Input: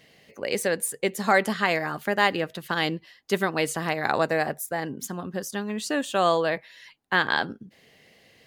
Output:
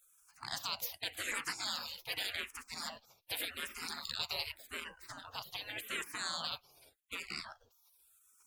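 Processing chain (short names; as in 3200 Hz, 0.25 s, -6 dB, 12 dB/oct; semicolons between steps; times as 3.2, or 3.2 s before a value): spectral gate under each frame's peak -25 dB weak; 1.57–2.46 dynamic EQ 2400 Hz, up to +4 dB, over -56 dBFS, Q 0.74; limiter -30.5 dBFS, peak gain reduction 10.5 dB; endless phaser -0.86 Hz; gain +8.5 dB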